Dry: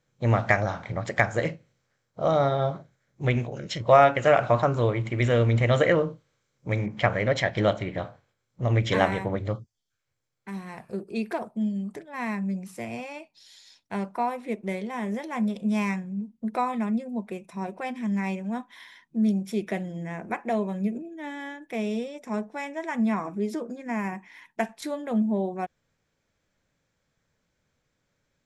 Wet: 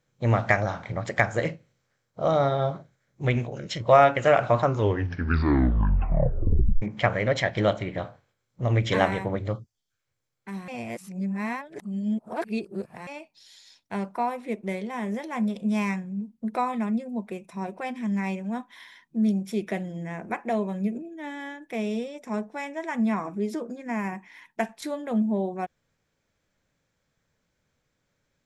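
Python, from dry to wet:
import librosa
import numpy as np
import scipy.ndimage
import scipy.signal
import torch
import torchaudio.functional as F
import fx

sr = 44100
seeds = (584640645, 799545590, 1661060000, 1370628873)

y = fx.edit(x, sr, fx.tape_stop(start_s=4.63, length_s=2.19),
    fx.reverse_span(start_s=10.68, length_s=2.39), tone=tone)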